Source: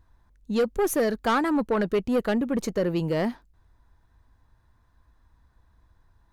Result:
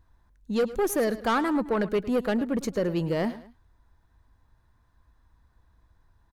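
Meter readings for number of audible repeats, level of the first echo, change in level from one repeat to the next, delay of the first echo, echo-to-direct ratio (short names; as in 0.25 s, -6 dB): 2, -16.0 dB, -8.5 dB, 0.107 s, -15.5 dB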